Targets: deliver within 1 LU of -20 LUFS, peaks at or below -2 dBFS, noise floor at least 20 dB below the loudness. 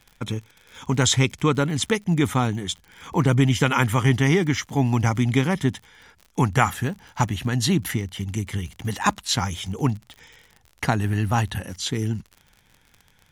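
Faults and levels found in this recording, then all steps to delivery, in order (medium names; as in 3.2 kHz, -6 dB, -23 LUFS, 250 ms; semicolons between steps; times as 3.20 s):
tick rate 53 per s; loudness -23.0 LUFS; peak level -2.0 dBFS; loudness target -20.0 LUFS
-> de-click; trim +3 dB; peak limiter -2 dBFS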